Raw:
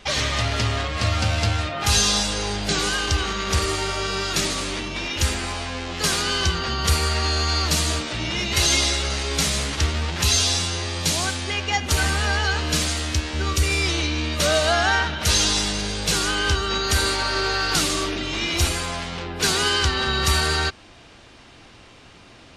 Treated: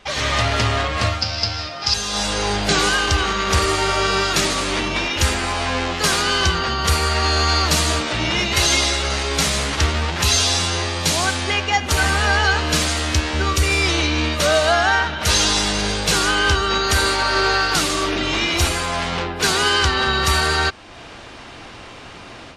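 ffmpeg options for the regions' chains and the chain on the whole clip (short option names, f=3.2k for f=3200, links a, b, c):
-filter_complex "[0:a]asettb=1/sr,asplit=3[a][b][c];[a]atrim=end=1.214[d];[b]atrim=start=1.21:end=1.94,asetpts=PTS-STARTPTS,afade=t=in:d=0.004:c=qsin,afade=t=out:st=0.726:d=0.004:c=qsin,acrusher=bits=5:mix=0:aa=0.5,lowpass=f=5.1k:t=q:w=11[e];[c]atrim=start=1.936[f];[d][e]acrossfade=d=0.004:c1=hsin:c2=qsin[g];[g][f]acrossfade=d=0.004:c1=qsin:c2=hsin,equalizer=f=980:w=0.46:g=5,dynaudnorm=f=150:g=3:m=11.5dB,volume=-4.5dB"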